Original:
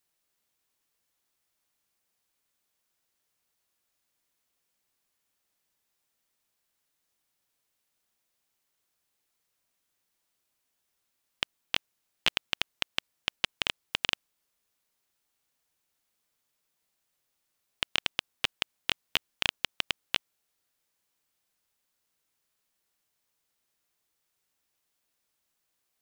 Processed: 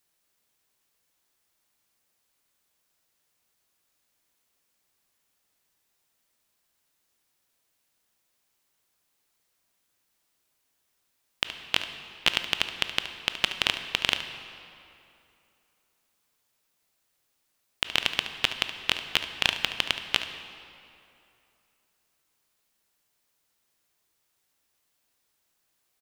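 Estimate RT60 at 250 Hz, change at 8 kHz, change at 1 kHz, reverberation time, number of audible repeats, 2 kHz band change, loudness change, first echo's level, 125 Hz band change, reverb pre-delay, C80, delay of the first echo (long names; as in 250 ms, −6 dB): 2.7 s, +4.5 dB, +5.0 dB, 2.8 s, 1, +5.0 dB, +4.5 dB, −12.5 dB, +4.5 dB, 16 ms, 10.0 dB, 72 ms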